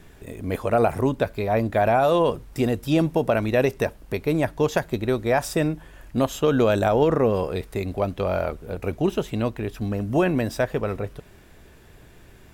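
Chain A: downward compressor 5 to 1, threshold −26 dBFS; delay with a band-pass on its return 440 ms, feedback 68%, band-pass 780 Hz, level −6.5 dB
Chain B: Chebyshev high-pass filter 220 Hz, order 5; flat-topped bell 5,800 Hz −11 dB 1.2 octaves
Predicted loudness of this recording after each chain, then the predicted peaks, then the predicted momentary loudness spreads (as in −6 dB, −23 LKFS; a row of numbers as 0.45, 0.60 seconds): −30.0, −24.5 LKFS; −14.0, −7.0 dBFS; 8, 11 LU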